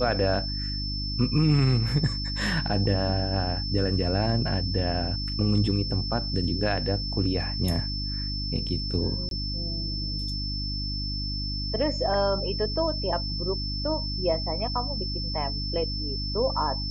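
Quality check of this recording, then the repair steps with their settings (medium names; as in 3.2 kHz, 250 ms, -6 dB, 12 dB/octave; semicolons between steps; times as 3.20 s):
hum 50 Hz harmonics 6 -32 dBFS
whine 5.3 kHz -32 dBFS
9.29–9.31 s: dropout 22 ms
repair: de-hum 50 Hz, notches 6; band-stop 5.3 kHz, Q 30; interpolate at 9.29 s, 22 ms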